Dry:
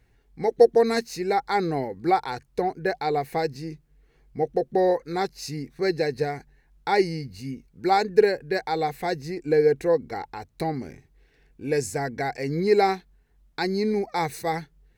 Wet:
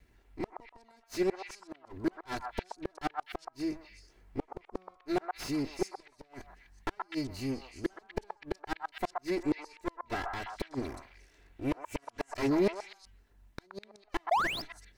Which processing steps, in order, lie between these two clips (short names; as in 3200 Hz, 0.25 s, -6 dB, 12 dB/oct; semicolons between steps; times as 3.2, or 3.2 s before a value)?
minimum comb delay 3 ms; flipped gate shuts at -19 dBFS, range -39 dB; delay with a stepping band-pass 0.125 s, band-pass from 1000 Hz, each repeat 1.4 oct, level 0 dB; painted sound rise, 14.31–14.62, 630–5400 Hz -21 dBFS; slew limiter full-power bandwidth 51 Hz